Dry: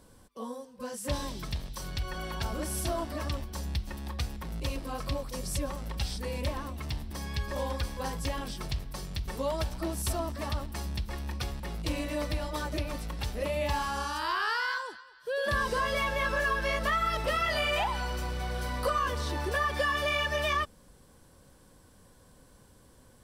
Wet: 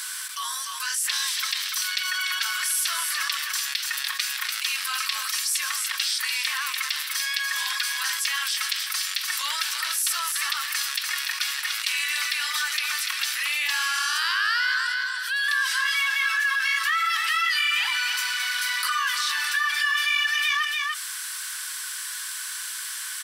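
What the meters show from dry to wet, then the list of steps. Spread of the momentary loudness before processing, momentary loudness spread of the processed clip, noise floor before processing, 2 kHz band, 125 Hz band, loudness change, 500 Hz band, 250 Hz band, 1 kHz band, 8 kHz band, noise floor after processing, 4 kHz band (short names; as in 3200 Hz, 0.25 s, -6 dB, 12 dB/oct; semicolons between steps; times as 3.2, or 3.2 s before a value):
9 LU, 7 LU, -58 dBFS, +11.5 dB, under -40 dB, +8.5 dB, under -25 dB, under -40 dB, +2.0 dB, +16.0 dB, -33 dBFS, +14.0 dB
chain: steep high-pass 1400 Hz 36 dB/oct; echo 0.292 s -11.5 dB; fast leveller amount 70%; gain +6 dB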